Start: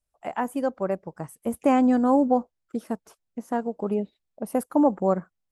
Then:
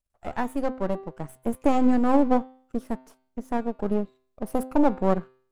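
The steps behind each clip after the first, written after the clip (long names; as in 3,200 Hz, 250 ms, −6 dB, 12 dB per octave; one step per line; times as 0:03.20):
gain on one half-wave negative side −12 dB
low-shelf EQ 410 Hz +5 dB
hum removal 129.4 Hz, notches 37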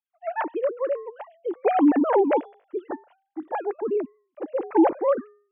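three sine waves on the formant tracks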